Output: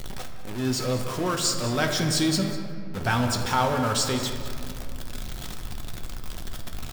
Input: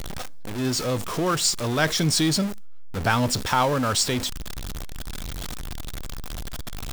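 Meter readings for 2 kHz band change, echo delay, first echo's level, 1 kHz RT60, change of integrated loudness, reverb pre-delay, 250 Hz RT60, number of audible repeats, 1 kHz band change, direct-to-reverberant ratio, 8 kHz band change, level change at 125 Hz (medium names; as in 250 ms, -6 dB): -2.5 dB, 196 ms, -15.0 dB, 2.3 s, -2.0 dB, 5 ms, 3.0 s, 1, -1.5 dB, 3.0 dB, -3.0 dB, -1.0 dB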